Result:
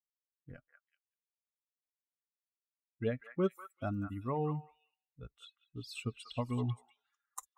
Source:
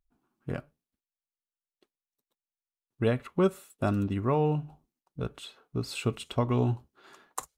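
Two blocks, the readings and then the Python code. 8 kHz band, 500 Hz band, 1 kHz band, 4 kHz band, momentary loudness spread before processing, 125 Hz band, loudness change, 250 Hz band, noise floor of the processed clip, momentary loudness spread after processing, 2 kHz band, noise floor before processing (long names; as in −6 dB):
can't be measured, −9.0 dB, −8.5 dB, −8.5 dB, 14 LU, −9.0 dB, −7.5 dB, −8.5 dB, below −85 dBFS, 21 LU, −8.0 dB, below −85 dBFS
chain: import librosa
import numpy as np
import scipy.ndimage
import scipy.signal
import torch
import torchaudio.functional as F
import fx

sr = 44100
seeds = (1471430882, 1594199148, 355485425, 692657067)

y = fx.bin_expand(x, sr, power=2.0)
y = fx.echo_stepped(y, sr, ms=192, hz=1400.0, octaves=1.4, feedback_pct=70, wet_db=-4)
y = fx.noise_reduce_blind(y, sr, reduce_db=12)
y = y * 10.0 ** (-5.5 / 20.0)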